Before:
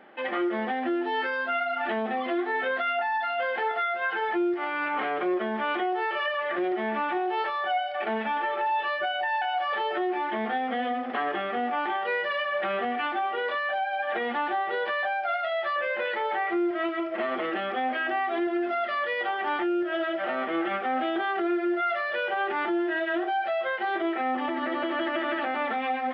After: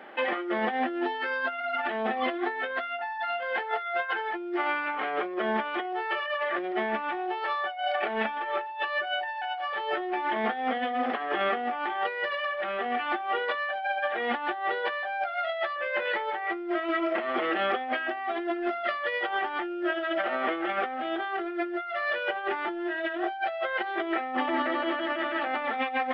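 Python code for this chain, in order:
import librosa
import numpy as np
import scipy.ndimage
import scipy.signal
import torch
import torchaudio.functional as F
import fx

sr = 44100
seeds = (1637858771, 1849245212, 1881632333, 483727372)

y = fx.highpass(x, sr, hz=320.0, slope=6)
y = fx.over_compress(y, sr, threshold_db=-32.0, ratio=-0.5)
y = y * 10.0 ** (3.0 / 20.0)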